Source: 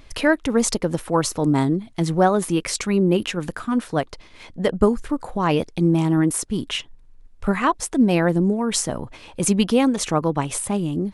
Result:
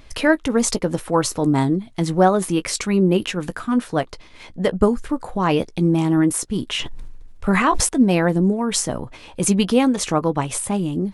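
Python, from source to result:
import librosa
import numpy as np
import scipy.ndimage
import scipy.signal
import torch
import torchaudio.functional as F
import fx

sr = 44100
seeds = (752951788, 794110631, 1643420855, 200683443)

y = fx.doubler(x, sr, ms=16.0, db=-13.5)
y = fx.sustainer(y, sr, db_per_s=26.0, at=(6.75, 7.89))
y = y * librosa.db_to_amplitude(1.0)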